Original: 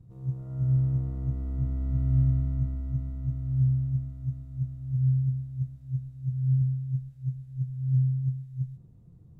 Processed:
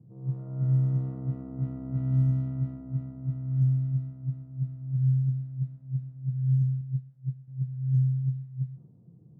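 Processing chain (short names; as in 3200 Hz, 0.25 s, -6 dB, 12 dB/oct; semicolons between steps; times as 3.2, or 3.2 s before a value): HPF 130 Hz 24 dB/oct; low-pass opened by the level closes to 590 Hz, open at -22 dBFS; 6.81–7.48 upward expander 1.5:1, over -43 dBFS; gain +3 dB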